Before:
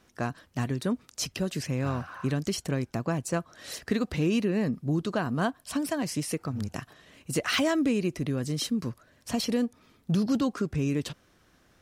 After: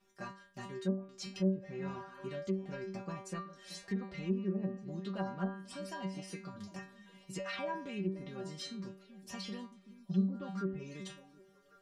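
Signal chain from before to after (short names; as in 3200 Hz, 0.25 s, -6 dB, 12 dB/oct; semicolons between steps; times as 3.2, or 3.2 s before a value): metallic resonator 190 Hz, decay 0.44 s, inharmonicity 0.002; treble ducked by the level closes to 600 Hz, closed at -34.5 dBFS; delay with a stepping band-pass 0.379 s, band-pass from 240 Hz, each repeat 1.4 oct, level -11.5 dB; gain +5 dB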